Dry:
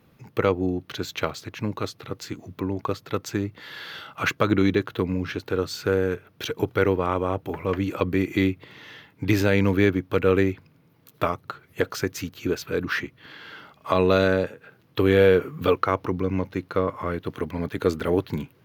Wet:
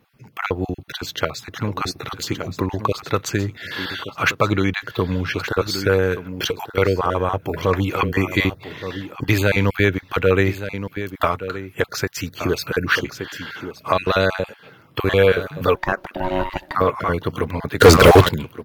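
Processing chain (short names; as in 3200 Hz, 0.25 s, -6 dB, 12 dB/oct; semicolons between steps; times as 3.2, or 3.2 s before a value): random spectral dropouts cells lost 20%; on a send: echo 1.172 s -13.5 dB; on the sum: dynamic EQ 270 Hz, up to -8 dB, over -35 dBFS, Q 0.88; 15.75–16.75 ring modulator 460 Hz; 17.8–18.29 sample leveller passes 5; AGC gain up to 11 dB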